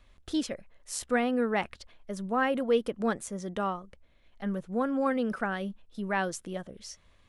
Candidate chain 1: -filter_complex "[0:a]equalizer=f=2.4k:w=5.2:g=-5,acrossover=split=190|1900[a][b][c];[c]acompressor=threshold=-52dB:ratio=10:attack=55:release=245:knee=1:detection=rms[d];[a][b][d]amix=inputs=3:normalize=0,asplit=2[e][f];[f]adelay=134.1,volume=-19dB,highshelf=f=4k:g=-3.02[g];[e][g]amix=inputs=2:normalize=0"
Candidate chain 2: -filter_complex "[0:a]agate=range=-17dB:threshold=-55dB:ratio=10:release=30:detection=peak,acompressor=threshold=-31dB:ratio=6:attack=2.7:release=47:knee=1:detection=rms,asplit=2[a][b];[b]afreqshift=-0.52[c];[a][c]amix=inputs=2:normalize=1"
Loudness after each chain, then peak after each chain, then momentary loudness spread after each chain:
-31.5, -40.5 LUFS; -14.5, -23.5 dBFS; 15, 8 LU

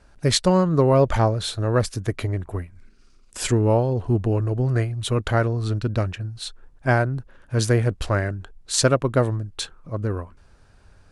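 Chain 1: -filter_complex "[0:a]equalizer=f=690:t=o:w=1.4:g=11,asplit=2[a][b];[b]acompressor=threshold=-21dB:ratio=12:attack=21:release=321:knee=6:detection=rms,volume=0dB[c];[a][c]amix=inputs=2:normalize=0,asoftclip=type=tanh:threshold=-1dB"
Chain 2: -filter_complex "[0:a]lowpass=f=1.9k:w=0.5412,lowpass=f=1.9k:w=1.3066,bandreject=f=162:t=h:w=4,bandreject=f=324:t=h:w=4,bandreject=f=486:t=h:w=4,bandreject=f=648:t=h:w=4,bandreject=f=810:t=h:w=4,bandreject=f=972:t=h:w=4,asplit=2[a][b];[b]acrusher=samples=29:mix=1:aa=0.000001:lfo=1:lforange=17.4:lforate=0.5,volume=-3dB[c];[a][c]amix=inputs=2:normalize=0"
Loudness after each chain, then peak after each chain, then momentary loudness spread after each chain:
-16.5, -19.0 LUFS; -2.0, -2.5 dBFS; 13, 14 LU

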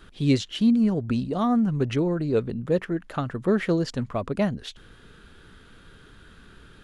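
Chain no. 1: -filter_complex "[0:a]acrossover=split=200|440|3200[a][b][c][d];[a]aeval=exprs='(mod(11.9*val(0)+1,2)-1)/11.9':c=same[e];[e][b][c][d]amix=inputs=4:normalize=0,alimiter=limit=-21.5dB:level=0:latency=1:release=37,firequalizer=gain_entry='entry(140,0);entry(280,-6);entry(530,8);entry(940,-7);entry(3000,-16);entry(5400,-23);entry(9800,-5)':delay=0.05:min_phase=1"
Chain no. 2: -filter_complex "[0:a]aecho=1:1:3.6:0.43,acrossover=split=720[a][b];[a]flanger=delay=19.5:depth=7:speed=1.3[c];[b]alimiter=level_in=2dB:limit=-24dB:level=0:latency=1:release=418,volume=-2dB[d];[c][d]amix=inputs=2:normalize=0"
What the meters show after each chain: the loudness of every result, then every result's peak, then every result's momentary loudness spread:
-31.0, -28.0 LUFS; -17.5, -11.5 dBFS; 5, 8 LU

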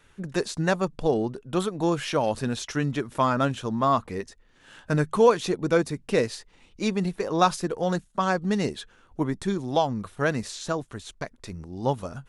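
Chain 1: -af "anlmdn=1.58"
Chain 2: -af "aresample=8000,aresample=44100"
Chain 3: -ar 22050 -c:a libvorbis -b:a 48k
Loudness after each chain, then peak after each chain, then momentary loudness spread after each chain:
-26.0, -26.5, -26.0 LUFS; -6.0, -7.0, -5.5 dBFS; 13, 12, 13 LU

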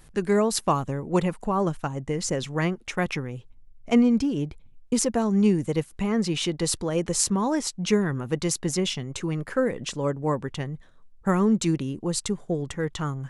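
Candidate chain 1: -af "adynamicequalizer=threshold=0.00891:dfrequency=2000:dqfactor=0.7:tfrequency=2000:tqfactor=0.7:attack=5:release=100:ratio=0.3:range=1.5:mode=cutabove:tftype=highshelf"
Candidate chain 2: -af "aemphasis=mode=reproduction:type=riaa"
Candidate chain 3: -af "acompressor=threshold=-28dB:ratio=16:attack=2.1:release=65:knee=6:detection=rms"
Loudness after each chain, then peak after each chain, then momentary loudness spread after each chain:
-26.0, -19.5, -34.5 LUFS; -6.5, -4.5, -17.5 dBFS; 9, 9, 5 LU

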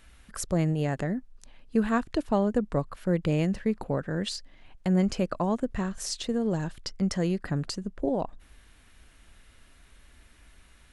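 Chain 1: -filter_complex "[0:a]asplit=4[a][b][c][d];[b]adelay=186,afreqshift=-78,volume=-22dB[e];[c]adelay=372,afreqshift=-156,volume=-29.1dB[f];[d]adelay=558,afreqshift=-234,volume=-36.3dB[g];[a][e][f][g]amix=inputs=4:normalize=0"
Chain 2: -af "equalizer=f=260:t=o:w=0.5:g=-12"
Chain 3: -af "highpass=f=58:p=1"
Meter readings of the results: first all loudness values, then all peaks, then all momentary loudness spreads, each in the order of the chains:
-29.0, -31.5, -29.5 LUFS; -12.5, -15.5, -13.0 dBFS; 9, 7, 9 LU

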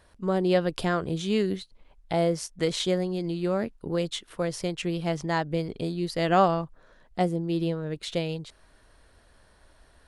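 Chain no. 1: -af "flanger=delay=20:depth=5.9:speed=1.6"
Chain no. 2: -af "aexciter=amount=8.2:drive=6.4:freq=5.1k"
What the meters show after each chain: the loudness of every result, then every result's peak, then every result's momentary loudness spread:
-31.0, -25.0 LUFS; -11.5, -3.0 dBFS; 9, 11 LU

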